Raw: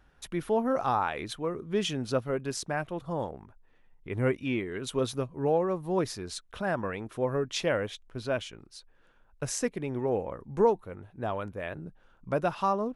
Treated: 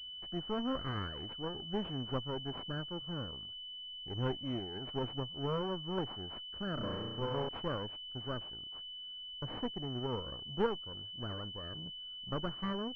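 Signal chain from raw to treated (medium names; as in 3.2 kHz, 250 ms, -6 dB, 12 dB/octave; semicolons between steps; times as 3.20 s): comb filter that takes the minimum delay 0.61 ms; 6.74–7.49 s: flutter echo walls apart 5.8 m, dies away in 0.98 s; class-D stage that switches slowly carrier 3 kHz; trim -7 dB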